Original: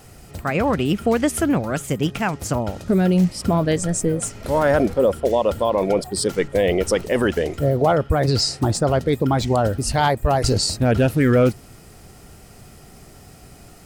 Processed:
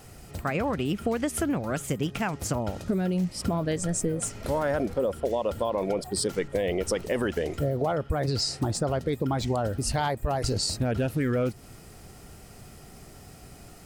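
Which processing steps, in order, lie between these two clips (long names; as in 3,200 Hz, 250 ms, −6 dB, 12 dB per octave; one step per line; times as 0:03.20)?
downward compressor 4 to 1, threshold −21 dBFS, peak gain reduction 8 dB
level −3 dB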